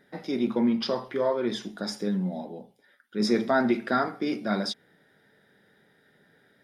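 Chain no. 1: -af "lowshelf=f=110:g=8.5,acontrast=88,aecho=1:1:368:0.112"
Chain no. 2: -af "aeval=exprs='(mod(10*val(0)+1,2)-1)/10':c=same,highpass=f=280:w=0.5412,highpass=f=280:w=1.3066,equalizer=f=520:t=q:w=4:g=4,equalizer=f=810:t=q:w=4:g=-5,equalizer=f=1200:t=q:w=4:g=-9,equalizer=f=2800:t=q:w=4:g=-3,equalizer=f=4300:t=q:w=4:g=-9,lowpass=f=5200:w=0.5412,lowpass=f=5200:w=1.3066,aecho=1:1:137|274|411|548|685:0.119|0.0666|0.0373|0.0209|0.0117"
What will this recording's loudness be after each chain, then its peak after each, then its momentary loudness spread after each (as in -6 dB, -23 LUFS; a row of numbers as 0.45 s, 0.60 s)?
-20.0 LUFS, -31.5 LUFS; -5.5 dBFS, -14.5 dBFS; 11 LU, 11 LU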